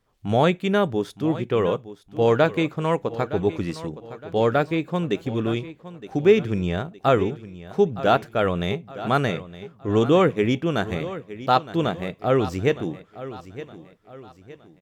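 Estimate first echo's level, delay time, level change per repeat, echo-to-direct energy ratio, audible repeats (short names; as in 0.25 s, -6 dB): -15.0 dB, 0.915 s, -7.5 dB, -14.0 dB, 3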